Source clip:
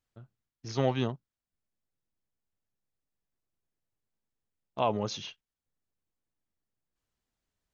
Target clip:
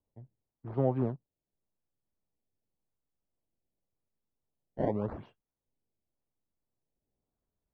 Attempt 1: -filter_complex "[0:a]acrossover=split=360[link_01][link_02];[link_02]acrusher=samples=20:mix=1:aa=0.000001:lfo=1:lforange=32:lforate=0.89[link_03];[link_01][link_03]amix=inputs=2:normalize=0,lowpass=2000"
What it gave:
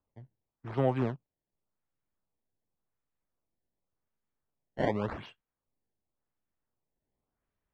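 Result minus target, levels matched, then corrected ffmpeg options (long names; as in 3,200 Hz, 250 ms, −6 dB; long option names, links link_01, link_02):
2,000 Hz band +12.0 dB
-filter_complex "[0:a]acrossover=split=360[link_01][link_02];[link_02]acrusher=samples=20:mix=1:aa=0.000001:lfo=1:lforange=32:lforate=0.89[link_03];[link_01][link_03]amix=inputs=2:normalize=0,lowpass=760"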